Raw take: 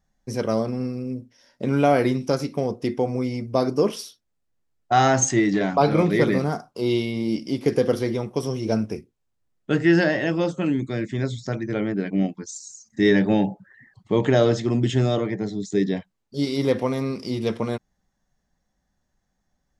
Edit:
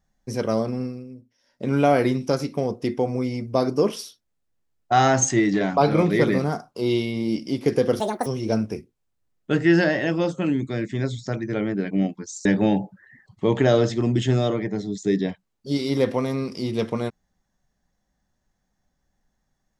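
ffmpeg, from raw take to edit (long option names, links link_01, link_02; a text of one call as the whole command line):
ffmpeg -i in.wav -filter_complex "[0:a]asplit=6[link_01][link_02][link_03][link_04][link_05][link_06];[link_01]atrim=end=1.08,asetpts=PTS-STARTPTS,afade=type=out:start_time=0.78:duration=0.3:silence=0.281838[link_07];[link_02]atrim=start=1.08:end=1.43,asetpts=PTS-STARTPTS,volume=-11dB[link_08];[link_03]atrim=start=1.43:end=8.004,asetpts=PTS-STARTPTS,afade=type=in:duration=0.3:silence=0.281838[link_09];[link_04]atrim=start=8:end=8.46,asetpts=PTS-STARTPTS,asetrate=77175,aresample=44100[link_10];[link_05]atrim=start=8.456:end=12.652[link_11];[link_06]atrim=start=13.128[link_12];[link_07][link_08][link_09]concat=n=3:v=0:a=1[link_13];[link_13][link_10]acrossfade=duration=0.004:curve1=hsin:curve2=hsin[link_14];[link_14][link_11]acrossfade=duration=0.004:curve1=hsin:curve2=hsin[link_15];[link_15][link_12]acrossfade=duration=0.004:curve1=hsin:curve2=hsin" out.wav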